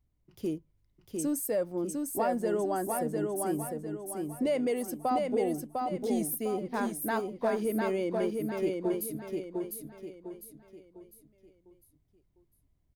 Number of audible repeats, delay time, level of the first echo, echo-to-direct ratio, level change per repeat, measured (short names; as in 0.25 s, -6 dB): 4, 0.702 s, -3.5 dB, -3.0 dB, -8.0 dB